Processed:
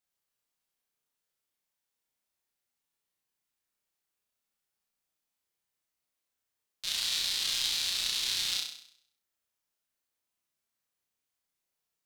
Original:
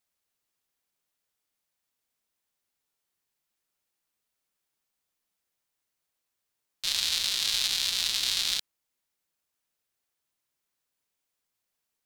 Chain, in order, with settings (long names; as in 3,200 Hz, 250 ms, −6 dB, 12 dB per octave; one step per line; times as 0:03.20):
flutter between parallel walls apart 5.6 metres, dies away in 0.63 s
level −6 dB